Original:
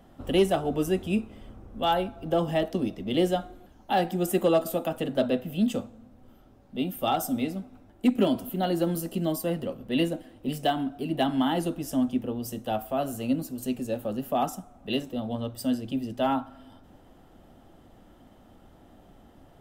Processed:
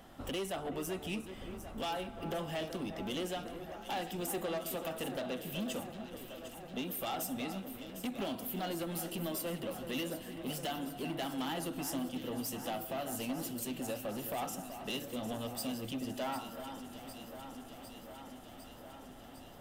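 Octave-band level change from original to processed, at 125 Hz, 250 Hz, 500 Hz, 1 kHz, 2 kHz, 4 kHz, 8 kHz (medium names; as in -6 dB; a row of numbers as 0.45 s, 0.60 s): -11.0 dB, -12.0 dB, -11.5 dB, -10.5 dB, -6.0 dB, -6.0 dB, -1.5 dB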